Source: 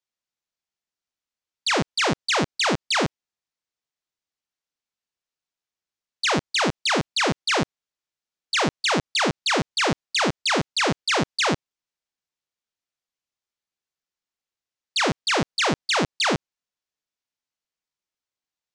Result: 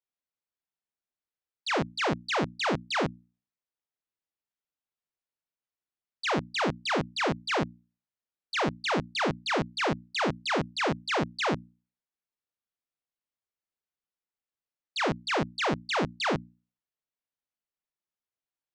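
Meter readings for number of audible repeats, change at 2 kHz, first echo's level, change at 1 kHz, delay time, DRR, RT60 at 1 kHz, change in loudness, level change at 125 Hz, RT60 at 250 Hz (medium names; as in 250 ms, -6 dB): no echo, -6.5 dB, no echo, -5.0 dB, no echo, no reverb, no reverb, -6.5 dB, -4.5 dB, no reverb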